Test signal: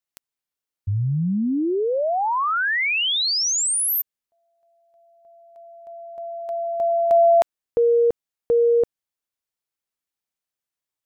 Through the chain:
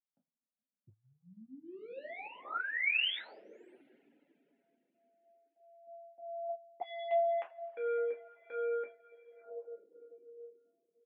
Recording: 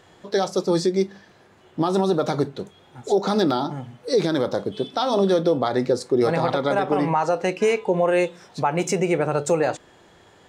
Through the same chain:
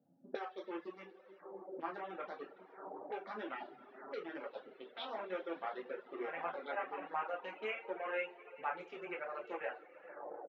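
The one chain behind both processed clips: Wiener smoothing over 41 samples; LPF 6100 Hz 12 dB/oct; on a send: feedback echo 85 ms, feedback 32%, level -16 dB; on the sum: envelope phaser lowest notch 380 Hz, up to 4300 Hz, full sweep at -17.5 dBFS; three-band isolator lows -22 dB, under 190 Hz, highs -24 dB, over 2500 Hz; two-slope reverb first 0.35 s, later 4.2 s, from -18 dB, DRR -1.5 dB; auto-wah 210–2800 Hz, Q 2.3, up, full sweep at -27.5 dBFS; flange 0.23 Hz, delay 6.8 ms, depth 5 ms, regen -32%; reverb removal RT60 0.71 s; HPF 150 Hz; gain +3.5 dB

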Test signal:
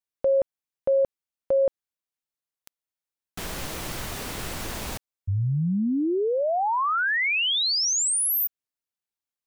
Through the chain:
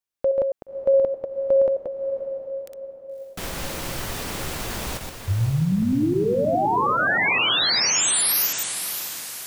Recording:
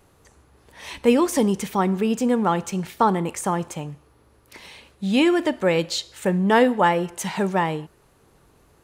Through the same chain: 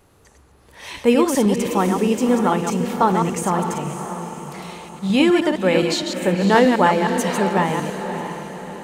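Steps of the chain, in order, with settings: reverse delay 0.104 s, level -5 dB; diffused feedback echo 0.573 s, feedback 49%, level -8.5 dB; gain +1.5 dB

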